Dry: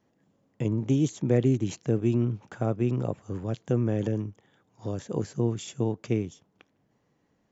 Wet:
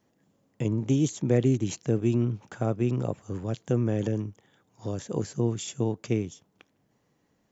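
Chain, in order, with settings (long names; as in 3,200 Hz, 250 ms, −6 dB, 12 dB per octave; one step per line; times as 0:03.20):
high-shelf EQ 4,800 Hz +7 dB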